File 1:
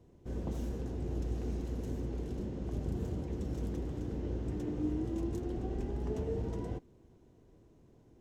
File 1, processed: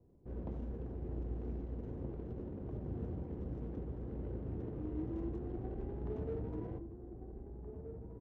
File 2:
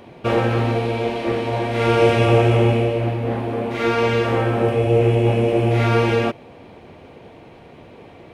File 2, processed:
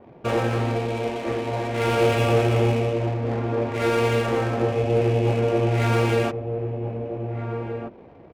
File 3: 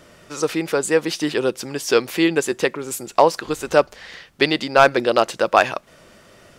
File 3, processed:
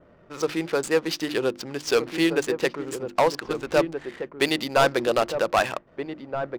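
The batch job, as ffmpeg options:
-filter_complex "[0:a]bandreject=f=50:t=h:w=6,bandreject=f=100:t=h:w=6,bandreject=f=150:t=h:w=6,bandreject=f=200:t=h:w=6,bandreject=f=250:t=h:w=6,bandreject=f=300:t=h:w=6,bandreject=f=350:t=h:w=6,adynamicequalizer=threshold=0.0112:dfrequency=4700:dqfactor=2:tfrequency=4700:tqfactor=2:attack=5:release=100:ratio=0.375:range=1.5:mode=boostabove:tftype=bell,asoftclip=type=hard:threshold=0.355,adynamicsmooth=sensitivity=6:basefreq=930,asplit=2[s0][s1];[s1]adelay=1574,volume=0.447,highshelf=f=4000:g=-35.4[s2];[s0][s2]amix=inputs=2:normalize=0,volume=0.631"

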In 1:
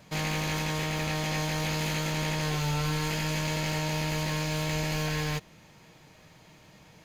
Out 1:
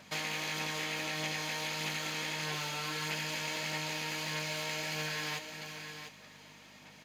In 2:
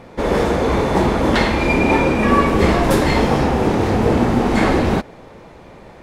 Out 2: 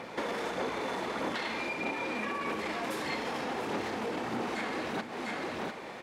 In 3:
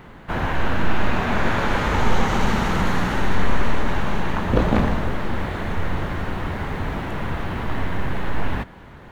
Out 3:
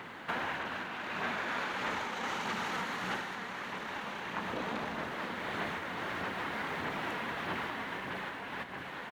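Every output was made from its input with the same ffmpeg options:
-filter_complex "[0:a]alimiter=limit=0.266:level=0:latency=1:release=10,tiltshelf=f=1100:g=-6,asplit=2[s0][s1];[s1]aecho=0:1:698:0.211[s2];[s0][s2]amix=inputs=2:normalize=0,acompressor=threshold=0.0282:ratio=12,asplit=2[s3][s4];[s4]adelay=32,volume=0.211[s5];[s3][s5]amix=inputs=2:normalize=0,aphaser=in_gain=1:out_gain=1:delay=4.3:decay=0.28:speed=1.6:type=sinusoidal,aeval=exprs='val(0)+0.00282*(sin(2*PI*50*n/s)+sin(2*PI*2*50*n/s)/2+sin(2*PI*3*50*n/s)/3+sin(2*PI*4*50*n/s)/4+sin(2*PI*5*50*n/s)/5)':c=same,highpass=200,highshelf=f=4800:g=-7.5,asplit=2[s6][s7];[s7]aecho=0:1:436:0.158[s8];[s6][s8]amix=inputs=2:normalize=0"

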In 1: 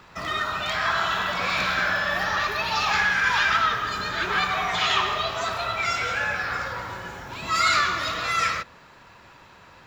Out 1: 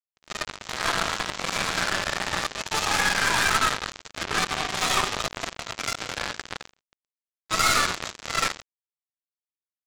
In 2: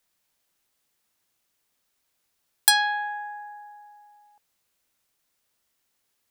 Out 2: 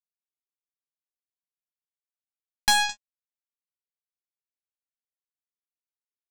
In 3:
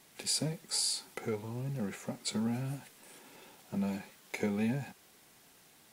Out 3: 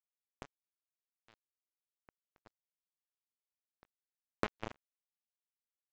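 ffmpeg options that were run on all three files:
-filter_complex "[0:a]lowshelf=f=68:g=-4.5,bandreject=f=2900:w=8.3,aecho=1:1:214:0.224,adynamicequalizer=threshold=0.00282:dfrequency=590:dqfactor=7.7:tfrequency=590:tqfactor=7.7:attack=5:release=100:ratio=0.375:range=1.5:mode=cutabove:tftype=bell,acrossover=split=850|5700[s0][s1][s2];[s0]acontrast=21[s3];[s3][s1][s2]amix=inputs=3:normalize=0,aresample=16000,acrusher=bits=2:mix=0:aa=0.5,aresample=44100,aeval=exprs='(tanh(14.1*val(0)+0.4)-tanh(0.4))/14.1':c=same,agate=range=0.355:threshold=0.00158:ratio=16:detection=peak,volume=2.51"

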